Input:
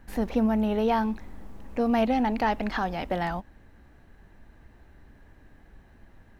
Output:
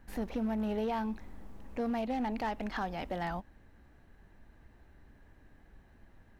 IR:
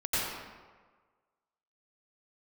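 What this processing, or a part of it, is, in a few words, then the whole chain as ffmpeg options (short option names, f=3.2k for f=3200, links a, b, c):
limiter into clipper: -af "alimiter=limit=-19dB:level=0:latency=1:release=227,asoftclip=type=hard:threshold=-22dB,volume=-5.5dB"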